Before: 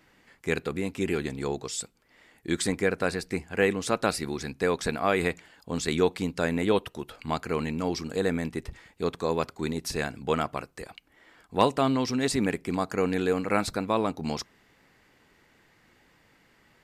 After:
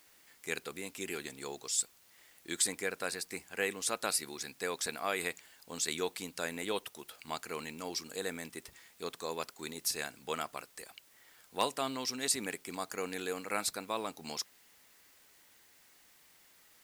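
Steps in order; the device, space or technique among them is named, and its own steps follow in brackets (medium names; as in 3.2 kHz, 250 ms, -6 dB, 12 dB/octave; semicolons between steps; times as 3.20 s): turntable without a phono preamp (RIAA curve recording; white noise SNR 25 dB); trim -9 dB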